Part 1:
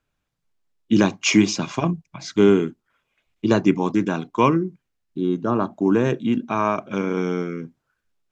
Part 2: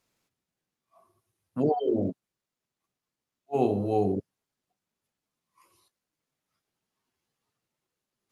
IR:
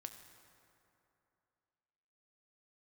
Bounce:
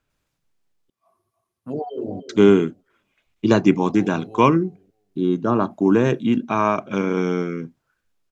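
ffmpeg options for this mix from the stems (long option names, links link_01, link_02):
-filter_complex "[0:a]volume=2dB,asplit=3[link_01][link_02][link_03];[link_01]atrim=end=0.9,asetpts=PTS-STARTPTS,afade=type=out:start_time=0.896:duration=0.004:curve=hsin[link_04];[link_02]atrim=start=0.9:end=2.29,asetpts=PTS-STARTPTS,volume=0[link_05];[link_03]atrim=start=2.29,asetpts=PTS-STARTPTS,afade=type=in:duration=0.004:curve=hsin[link_06];[link_04][link_05][link_06]concat=n=3:v=0:a=1,asplit=2[link_07][link_08];[1:a]adelay=100,volume=-3dB,asplit=2[link_09][link_10];[link_10]volume=-11dB[link_11];[link_08]apad=whole_len=371105[link_12];[link_09][link_12]sidechaincompress=threshold=-29dB:ratio=8:attack=16:release=390[link_13];[link_11]aecho=0:1:305|610|915:1|0.15|0.0225[link_14];[link_07][link_13][link_14]amix=inputs=3:normalize=0"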